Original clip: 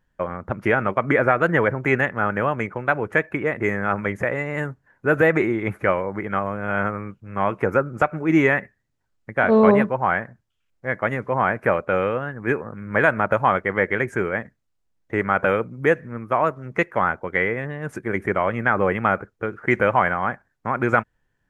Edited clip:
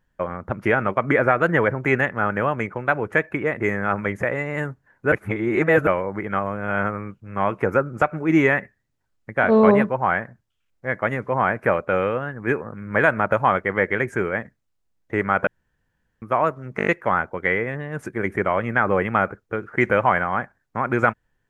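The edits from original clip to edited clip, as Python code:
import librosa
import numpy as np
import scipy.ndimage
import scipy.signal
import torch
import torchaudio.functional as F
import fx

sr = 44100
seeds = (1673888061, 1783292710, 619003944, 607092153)

y = fx.edit(x, sr, fx.reverse_span(start_s=5.12, length_s=0.75),
    fx.room_tone_fill(start_s=15.47, length_s=0.75),
    fx.stutter(start_s=16.77, slice_s=0.02, count=6), tone=tone)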